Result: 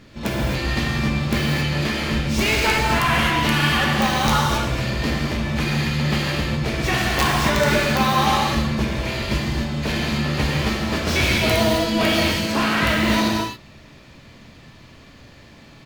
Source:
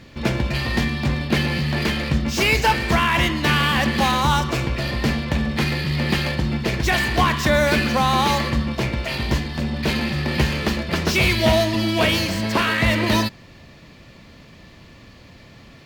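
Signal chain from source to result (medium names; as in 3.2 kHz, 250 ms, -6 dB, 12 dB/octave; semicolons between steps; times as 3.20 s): harmony voices -7 st -16 dB, -5 st -13 dB, +7 st -11 dB; integer overflow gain 6 dB; gated-style reverb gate 300 ms flat, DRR -3 dB; trim -5 dB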